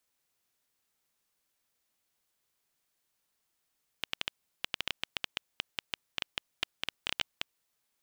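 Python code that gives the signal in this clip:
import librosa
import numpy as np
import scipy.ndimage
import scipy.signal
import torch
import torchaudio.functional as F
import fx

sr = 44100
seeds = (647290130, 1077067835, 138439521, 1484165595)

y = fx.geiger_clicks(sr, seeds[0], length_s=3.7, per_s=8.1, level_db=-12.5)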